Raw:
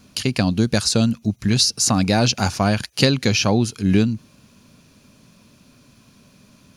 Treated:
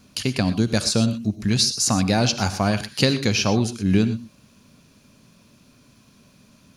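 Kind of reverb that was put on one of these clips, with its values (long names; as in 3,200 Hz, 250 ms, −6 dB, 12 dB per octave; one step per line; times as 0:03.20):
reverb whose tail is shaped and stops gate 140 ms rising, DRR 11.5 dB
level −2.5 dB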